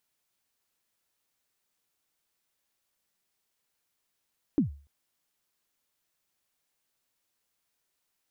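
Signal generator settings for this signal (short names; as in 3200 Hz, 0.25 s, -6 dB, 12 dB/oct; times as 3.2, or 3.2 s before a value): kick drum length 0.29 s, from 330 Hz, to 71 Hz, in 0.12 s, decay 0.38 s, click off, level -17 dB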